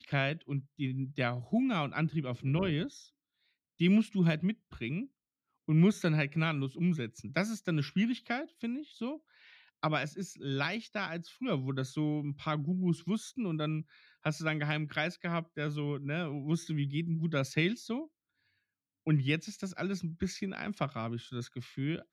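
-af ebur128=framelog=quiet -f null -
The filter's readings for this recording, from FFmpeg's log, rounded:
Integrated loudness:
  I:         -33.5 LUFS
  Threshold: -43.8 LUFS
Loudness range:
  LRA:         4.5 LU
  Threshold: -53.8 LUFS
  LRA low:   -35.9 LUFS
  LRA high:  -31.4 LUFS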